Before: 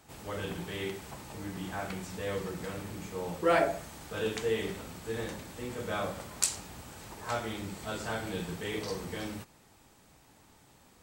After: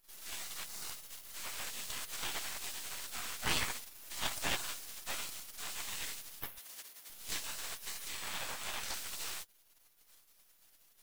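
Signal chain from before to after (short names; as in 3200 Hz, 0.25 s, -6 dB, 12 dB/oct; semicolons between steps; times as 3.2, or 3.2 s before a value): 0.44–1.3 minimum comb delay 1.2 ms; 8.08–8.94 tilt shelf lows +4 dB, about 640 Hz; spectral gate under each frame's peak -25 dB weak; half-wave rectifier; 6.58–7.1 HPF 320 Hz 6 dB/oct; gain +14 dB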